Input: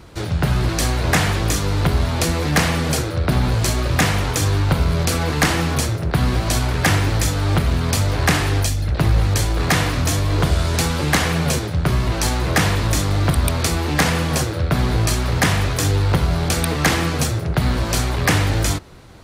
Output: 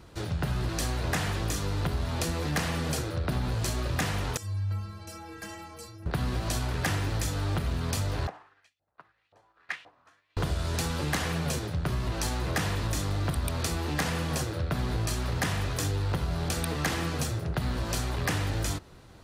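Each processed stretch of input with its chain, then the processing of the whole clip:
0:04.37–0:06.06: notch filter 3,700 Hz, Q 7.9 + stiff-string resonator 97 Hz, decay 0.8 s, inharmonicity 0.03
0:08.27–0:10.37: auto-filter band-pass saw up 1.9 Hz 650–3,000 Hz + expander for the loud parts 2.5 to 1, over −43 dBFS
whole clip: notch filter 2,200 Hz, Q 19; downward compressor 2.5 to 1, threshold −18 dBFS; level −8.5 dB

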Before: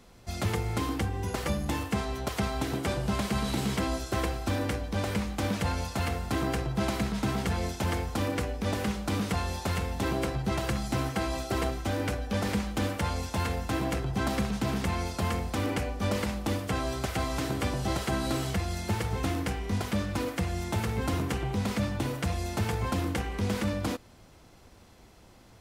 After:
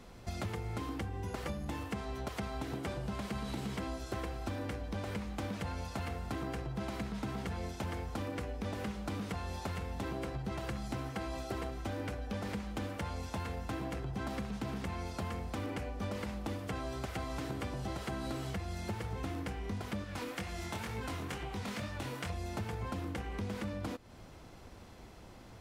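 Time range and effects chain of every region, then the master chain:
0:20.04–0:22.30: tilt shelving filter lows −4.5 dB, about 830 Hz + chorus effect 2.1 Hz, delay 18 ms, depth 7 ms
whole clip: high-shelf EQ 4,100 Hz −6 dB; downward compressor 4 to 1, threshold −40 dBFS; level +2.5 dB

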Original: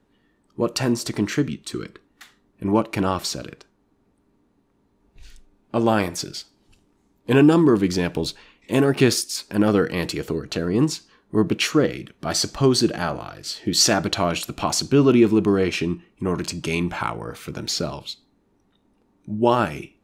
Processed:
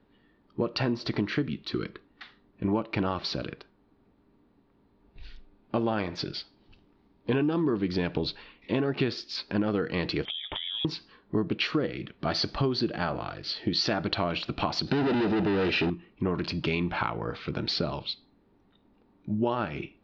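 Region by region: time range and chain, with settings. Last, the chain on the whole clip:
0:10.25–0:10.85: high-pass filter 51 Hz + voice inversion scrambler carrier 3,600 Hz + downward compressor 10 to 1, threshold −30 dBFS
0:14.87–0:15.90: leveller curve on the samples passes 3 + gain into a clipping stage and back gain 15.5 dB + notch comb filter 1,100 Hz
whole clip: Butterworth low-pass 4,700 Hz 48 dB per octave; downward compressor 6 to 1, threshold −24 dBFS

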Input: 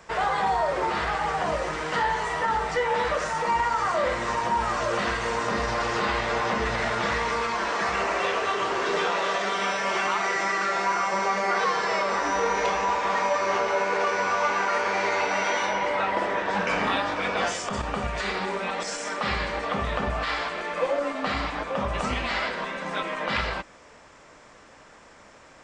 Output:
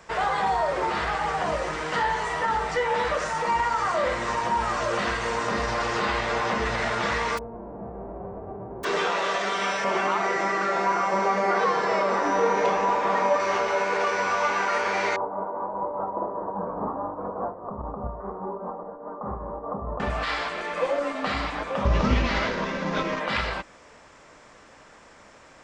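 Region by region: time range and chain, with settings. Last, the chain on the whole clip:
0:07.37–0:08.83: spectral envelope flattened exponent 0.1 + inverse Chebyshev low-pass filter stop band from 4,300 Hz, stop band 80 dB
0:09.84–0:13.40: high-pass filter 130 Hz + tilt shelving filter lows +5.5 dB, about 1,300 Hz
0:15.16–0:20.00: elliptic low-pass filter 1,100 Hz, stop band 60 dB + shaped tremolo triangle 4.9 Hz, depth 50%
0:21.85–0:23.20: variable-slope delta modulation 32 kbit/s + low-shelf EQ 470 Hz +11 dB + notch filter 730 Hz, Q 9.2
whole clip: no processing

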